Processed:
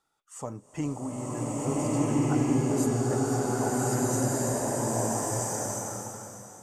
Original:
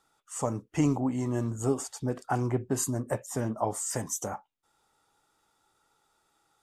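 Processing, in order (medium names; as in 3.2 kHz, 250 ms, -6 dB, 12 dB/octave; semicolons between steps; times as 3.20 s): swelling reverb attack 1590 ms, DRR -10 dB; trim -6.5 dB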